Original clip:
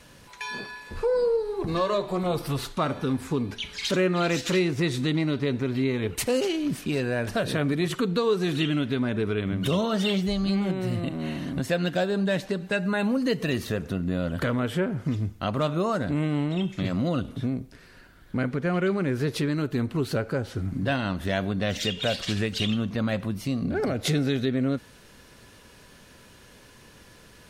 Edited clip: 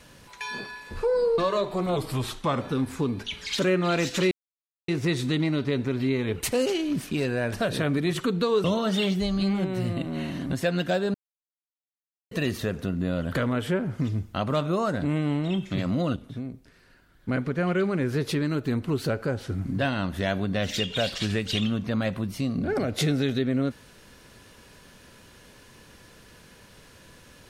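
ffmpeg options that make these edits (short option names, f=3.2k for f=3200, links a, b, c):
-filter_complex "[0:a]asplit=10[a][b][c][d][e][f][g][h][i][j];[a]atrim=end=1.382[k];[b]atrim=start=1.748:end=2.334[l];[c]atrim=start=2.33:end=2.93,asetpts=PTS-STARTPTS,asetrate=40572,aresample=44100[m];[d]atrim=start=2.926:end=4.63,asetpts=PTS-STARTPTS,afade=t=out:st=1.7:d=0.004:c=hsin,apad=pad_dur=0.57[n];[e]atrim=start=4.63:end=8.392,asetpts=PTS-STARTPTS,afade=t=in:d=0.004:c=hsin[o];[f]atrim=start=9.708:end=12.21,asetpts=PTS-STARTPTS,afade=t=out:st=2.498:d=0.004:c=hsin[p];[g]atrim=start=12.21:end=13.38,asetpts=PTS-STARTPTS,volume=0[q];[h]atrim=start=13.38:end=17.232,asetpts=PTS-STARTPTS,afade=t=in:d=0.004:c=hsin[r];[i]atrim=start=17.228:end=18.352,asetpts=PTS-STARTPTS,volume=-6.5dB[s];[j]atrim=start=18.348[t];[k][l]acrossfade=d=0.004:c1=hsin:c2=hsin[u];[u][m]acrossfade=d=0.004:c1=hsin:c2=hsin[v];[n][o]concat=n=2:v=0:a=1[w];[v][w]acrossfade=d=0.004:c1=hsin:c2=hsin[x];[p][q][r]concat=n=3:v=0:a=1[y];[x][y]acrossfade=d=0.004:c1=hsin:c2=hsin[z];[z][s]acrossfade=d=0.004:c1=hsin:c2=hsin[aa];[aa][t]acrossfade=d=0.004:c1=hsin:c2=hsin"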